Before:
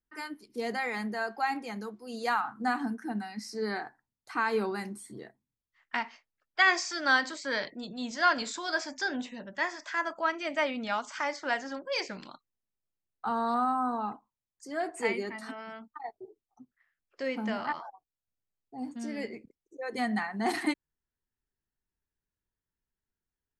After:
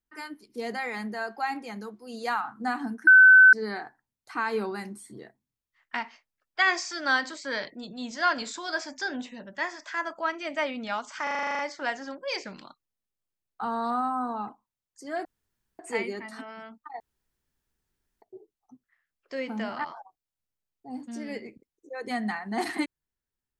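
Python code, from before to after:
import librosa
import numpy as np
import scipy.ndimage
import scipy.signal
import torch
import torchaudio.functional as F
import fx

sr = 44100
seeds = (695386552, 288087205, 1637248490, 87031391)

y = fx.edit(x, sr, fx.bleep(start_s=3.07, length_s=0.46, hz=1520.0, db=-10.0),
    fx.stutter(start_s=11.23, slice_s=0.04, count=10),
    fx.insert_room_tone(at_s=14.89, length_s=0.54),
    fx.insert_room_tone(at_s=16.1, length_s=1.22), tone=tone)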